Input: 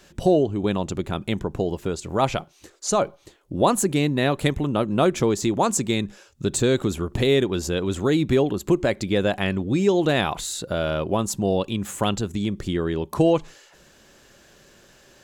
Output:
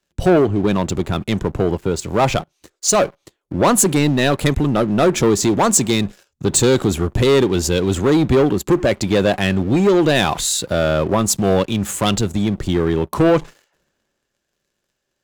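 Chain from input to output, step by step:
leveller curve on the samples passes 3
multiband upward and downward expander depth 40%
level −2 dB

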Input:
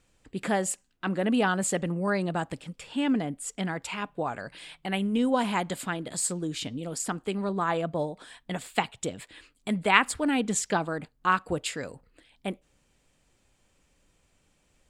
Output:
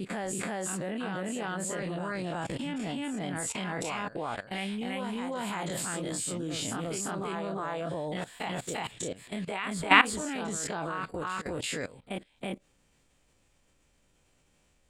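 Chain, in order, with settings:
every bin's largest magnitude spread in time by 60 ms
backwards echo 344 ms −4.5 dB
output level in coarse steps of 17 dB

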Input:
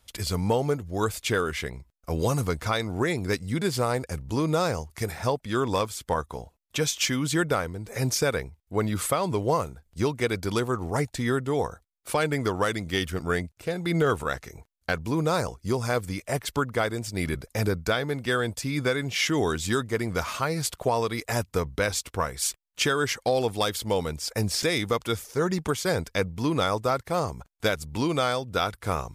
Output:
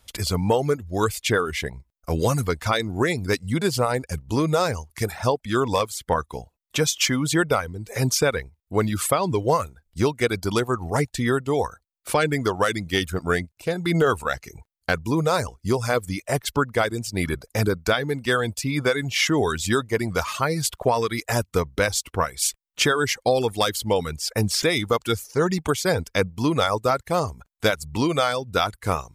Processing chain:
reverb reduction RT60 0.69 s
level +4.5 dB

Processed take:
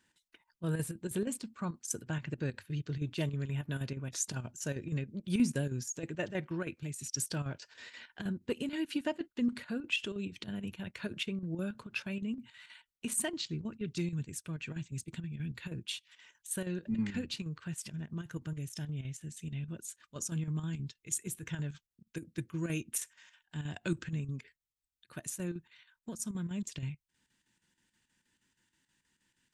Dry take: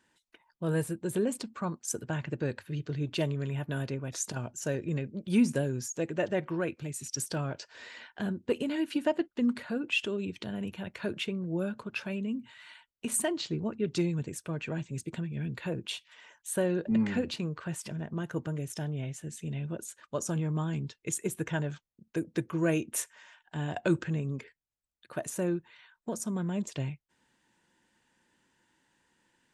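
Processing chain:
square-wave tremolo 6.3 Hz, depth 60%, duty 75%
parametric band 630 Hz −8 dB 2.2 octaves, from 0:13.37 −14.5 dB

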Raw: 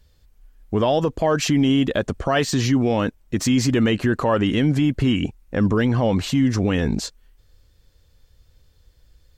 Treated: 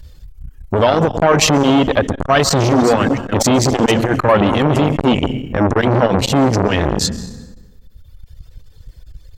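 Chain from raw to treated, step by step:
0:02.44–0:05.05: delay that plays each chunk backwards 246 ms, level −6.5 dB
reverb reduction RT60 1.7 s
low-shelf EQ 140 Hz +9 dB
dense smooth reverb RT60 1.3 s, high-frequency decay 0.65×, pre-delay 115 ms, DRR 14.5 dB
boost into a limiter +14 dB
saturating transformer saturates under 600 Hz

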